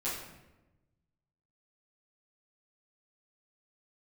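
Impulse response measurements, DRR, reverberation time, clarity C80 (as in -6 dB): -11.5 dB, 1.0 s, 5.5 dB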